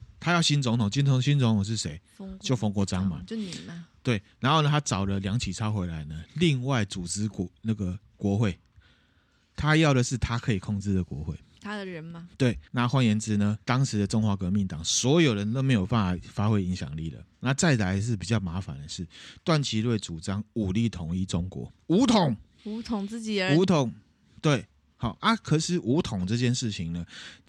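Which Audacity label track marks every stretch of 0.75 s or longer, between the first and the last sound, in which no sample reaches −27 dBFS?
8.510000	9.580000	silence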